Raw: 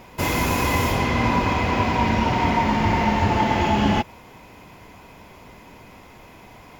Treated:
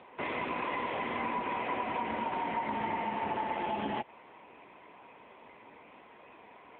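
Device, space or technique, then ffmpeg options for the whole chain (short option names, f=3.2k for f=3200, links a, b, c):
voicemail: -af "highpass=310,lowpass=3.2k,acompressor=threshold=-24dB:ratio=8,volume=-5dB" -ar 8000 -c:a libopencore_amrnb -b:a 7950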